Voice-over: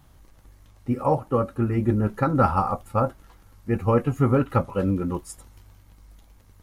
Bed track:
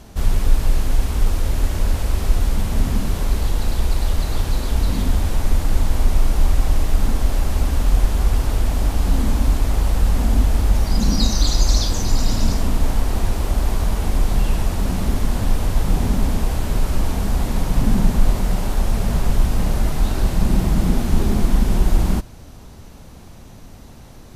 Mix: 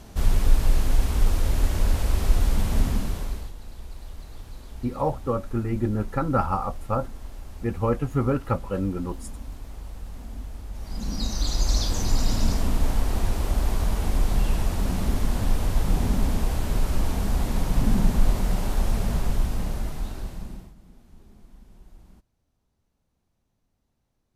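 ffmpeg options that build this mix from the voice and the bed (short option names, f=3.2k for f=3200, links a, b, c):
-filter_complex "[0:a]adelay=3950,volume=-3.5dB[a];[1:a]volume=13dB,afade=t=out:st=2.77:d=0.76:silence=0.133352,afade=t=in:st=10.72:d=1.3:silence=0.158489,afade=t=out:st=18.89:d=1.85:silence=0.0334965[b];[a][b]amix=inputs=2:normalize=0"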